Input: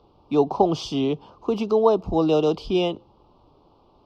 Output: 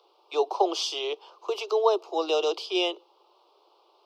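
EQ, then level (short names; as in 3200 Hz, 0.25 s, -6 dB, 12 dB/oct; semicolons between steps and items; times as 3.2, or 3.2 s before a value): steep high-pass 340 Hz 96 dB/oct; tilt shelf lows -6 dB, about 1400 Hz; 0.0 dB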